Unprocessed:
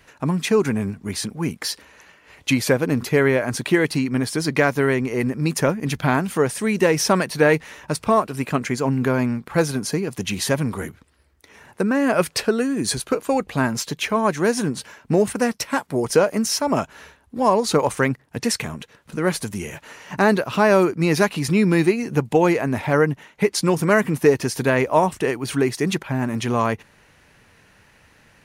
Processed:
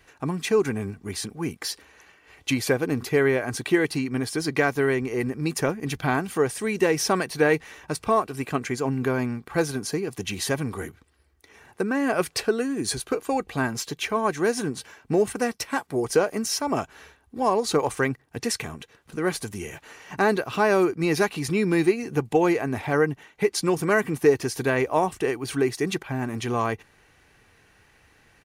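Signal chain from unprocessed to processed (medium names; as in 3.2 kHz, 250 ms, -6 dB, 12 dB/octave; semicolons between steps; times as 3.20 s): comb 2.6 ms, depth 34%; trim -4.5 dB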